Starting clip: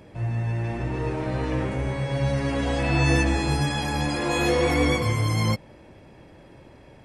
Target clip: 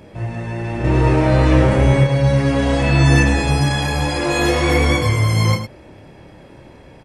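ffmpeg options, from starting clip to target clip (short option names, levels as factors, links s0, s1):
-filter_complex "[0:a]asettb=1/sr,asplit=3[s0][s1][s2];[s0]atrim=end=0.844[s3];[s1]atrim=start=0.84:end=2.04,asetpts=PTS-STARTPTS,afade=t=in:d=0.004:c=qsin,afade=t=out:st=1.196:d=0.004:c=qsin,acontrast=57[s4];[s2]atrim=start=2.036[s5];[s3][s4]acrossfade=d=0.004:c1=hsin:c2=qsin[s6];[s6][s5]acrossfade=d=0.004:c1=qsin:c2=hsin,aecho=1:1:29.15|107.9:0.562|0.355,volume=1.78"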